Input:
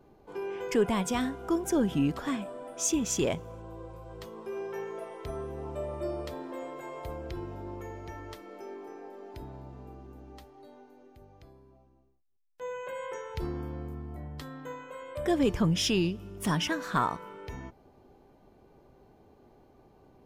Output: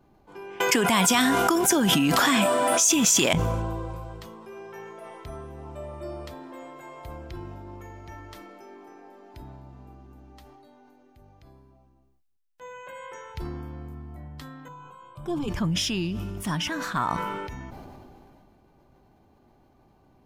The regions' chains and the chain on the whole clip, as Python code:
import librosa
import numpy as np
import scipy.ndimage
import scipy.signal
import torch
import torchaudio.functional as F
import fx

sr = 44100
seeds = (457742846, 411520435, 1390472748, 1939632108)

y = fx.chain(x, sr, fx.highpass(hz=130.0, slope=12),
    fx.tilt_eq(slope=2.5),
    fx.env_flatten(amount_pct=100), at=(0.6, 3.33))
y = fx.chain(y, sr, fx.bass_treble(bass_db=6, treble_db=-8),
    fx.fixed_phaser(hz=380.0, stages=8), at=(14.68, 15.48))
y = fx.peak_eq(y, sr, hz=450.0, db=-8.5, octaves=0.62)
y = fx.sustainer(y, sr, db_per_s=22.0)